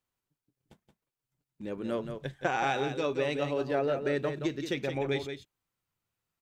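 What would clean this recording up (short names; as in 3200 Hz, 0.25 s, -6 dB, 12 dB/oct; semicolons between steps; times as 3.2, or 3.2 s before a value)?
inverse comb 0.174 s -8 dB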